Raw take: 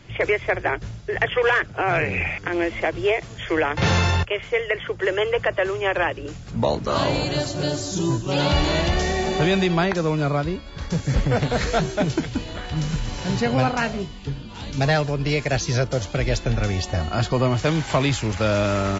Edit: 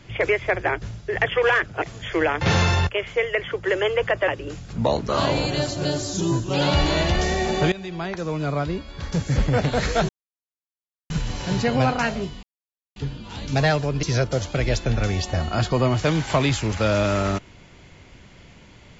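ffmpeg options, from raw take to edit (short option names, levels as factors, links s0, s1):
-filter_complex "[0:a]asplit=8[s0][s1][s2][s3][s4][s5][s6][s7];[s0]atrim=end=1.822[s8];[s1]atrim=start=3.178:end=5.642[s9];[s2]atrim=start=6.058:end=9.5,asetpts=PTS-STARTPTS,afade=t=out:st=3.438:d=0.004:c=hsin:silence=0.112202[s10];[s3]atrim=start=9.5:end=11.87,asetpts=PTS-STARTPTS,afade=t=in:d=1.14:silence=0.112202,afade=t=out:st=2.366:d=0.004:c=hsin[s11];[s4]atrim=start=11.87:end=12.88,asetpts=PTS-STARTPTS,volume=0[s12];[s5]atrim=start=12.88:end=14.21,asetpts=PTS-STARTPTS,afade=t=in:d=0.004:c=hsin,afade=t=out:st=1.326:d=0.004:c=hsin,apad=pad_dur=0.53[s13];[s6]atrim=start=14.21:end=15.282,asetpts=PTS-STARTPTS,afade=t=in:d=0.004:c=hsin[s14];[s7]atrim=start=15.628[s15];[s8][s9]acrossfade=d=0.004:c1=hsin:c2=hsin[s16];[s10][s11][s12][s13][s14]concat=n=5:v=0:a=1[s17];[s16][s17]acrossfade=d=0.004:c1=hsin:c2=hsin[s18];[s18][s15]acrossfade=d=0.004:c1=hsin:c2=hsin"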